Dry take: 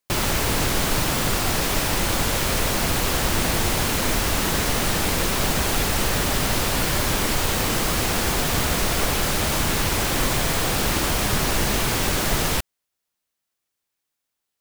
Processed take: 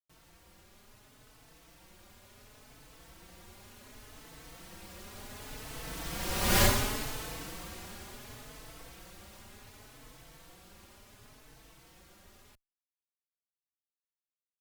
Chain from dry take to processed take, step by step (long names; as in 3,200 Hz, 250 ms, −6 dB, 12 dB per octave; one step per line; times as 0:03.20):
source passing by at 0:06.60, 16 m/s, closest 1.3 metres
barber-pole flanger 4.1 ms +0.69 Hz
level +3 dB